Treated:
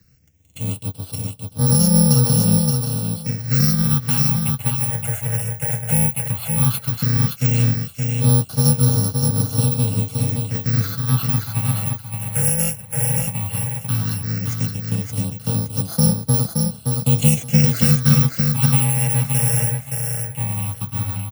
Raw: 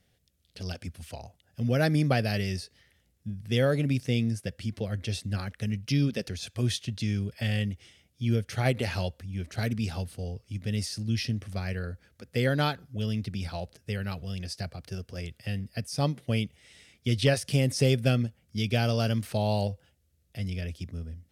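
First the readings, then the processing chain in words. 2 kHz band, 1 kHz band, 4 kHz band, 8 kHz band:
+2.5 dB, +5.5 dB, +6.0 dB, +21.0 dB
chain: samples in bit-reversed order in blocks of 128 samples
parametric band 87 Hz +7 dB 2.3 octaves
comb filter 6.2 ms, depth 38%
in parallel at +0.5 dB: downward compressor, threshold −36 dBFS, peak gain reduction 19.5 dB
on the sum: frequency shifter +15 Hz
all-pass phaser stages 6, 0.14 Hz, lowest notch 290–2,400 Hz
repeating echo 571 ms, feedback 21%, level −4 dB
dynamic equaliser 290 Hz, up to +4 dB, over −36 dBFS, Q 1.4
level +4.5 dB

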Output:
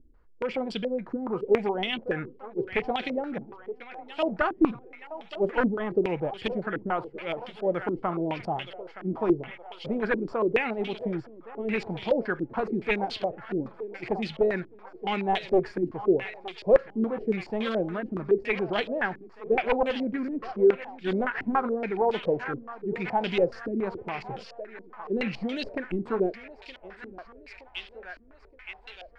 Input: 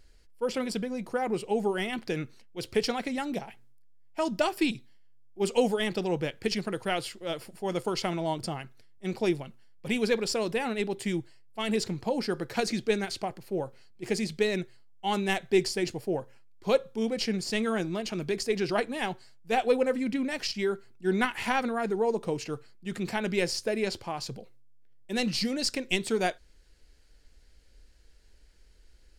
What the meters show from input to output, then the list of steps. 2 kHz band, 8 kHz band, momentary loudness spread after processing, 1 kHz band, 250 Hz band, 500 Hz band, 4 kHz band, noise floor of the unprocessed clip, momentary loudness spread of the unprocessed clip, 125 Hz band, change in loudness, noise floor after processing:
+1.5 dB, below −20 dB, 16 LU, +2.5 dB, +1.0 dB, +2.5 dB, −5.0 dB, −57 dBFS, 10 LU, −0.5 dB, +1.5 dB, −52 dBFS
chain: wavefolder on the positive side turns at −22 dBFS
feedback echo with a high-pass in the loop 920 ms, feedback 80%, high-pass 480 Hz, level −12.5 dB
low-pass on a step sequencer 7.1 Hz 290–3,200 Hz
level −1.5 dB

